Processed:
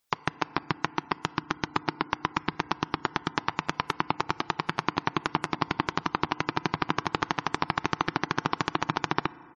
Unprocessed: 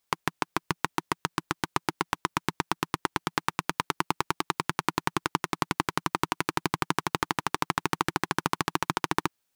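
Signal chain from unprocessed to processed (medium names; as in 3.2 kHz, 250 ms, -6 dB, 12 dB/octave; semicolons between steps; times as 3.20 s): FDN reverb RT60 2.5 s, low-frequency decay 1×, high-frequency decay 0.55×, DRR 18 dB; dynamic bell 7.8 kHz, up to -4 dB, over -56 dBFS, Q 2.6; spectral gate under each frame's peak -25 dB strong; harmony voices -4 st -12 dB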